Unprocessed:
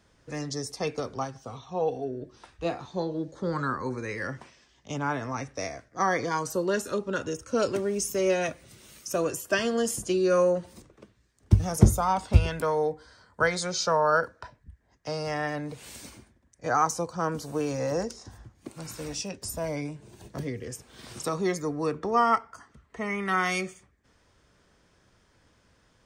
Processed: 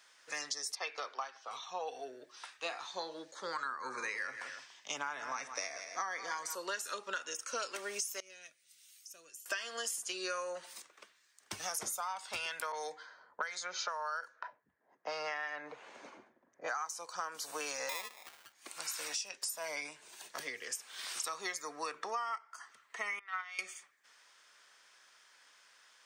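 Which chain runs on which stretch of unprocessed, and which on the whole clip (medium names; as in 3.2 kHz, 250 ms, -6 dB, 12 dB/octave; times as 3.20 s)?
0.75–1.51 s: three-band isolator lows -22 dB, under 300 Hz, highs -22 dB, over 4.7 kHz + tape noise reduction on one side only decoder only
3.65–6.55 s: bass shelf 450 Hz +7.5 dB + multi-tap echo 175/287 ms -13.5/-18.5 dB
8.20–9.46 s: amplifier tone stack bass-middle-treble 10-0-1 + tape noise reduction on one side only encoder only
12.72–16.69 s: level-controlled noise filter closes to 400 Hz, open at -21 dBFS + peaking EQ 6.5 kHz +8.5 dB 0.22 oct + three bands compressed up and down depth 70%
17.89–18.53 s: treble shelf 7 kHz -8.5 dB + sample-rate reducer 1.5 kHz
23.19–23.59 s: gate -24 dBFS, range -18 dB + three-band isolator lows -18 dB, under 500 Hz, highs -22 dB, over 4.6 kHz
whole clip: high-pass 1.3 kHz 12 dB/octave; compression 12:1, threshold -41 dBFS; trim +6 dB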